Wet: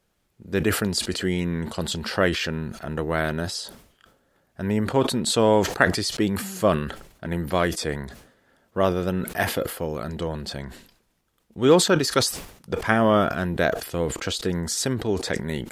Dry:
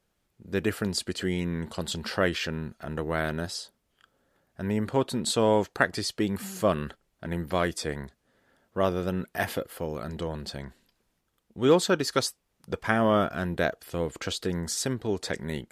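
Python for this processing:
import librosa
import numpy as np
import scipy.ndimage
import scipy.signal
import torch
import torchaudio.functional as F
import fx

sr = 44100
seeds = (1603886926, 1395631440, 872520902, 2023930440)

y = fx.sustainer(x, sr, db_per_s=91.0)
y = F.gain(torch.from_numpy(y), 4.0).numpy()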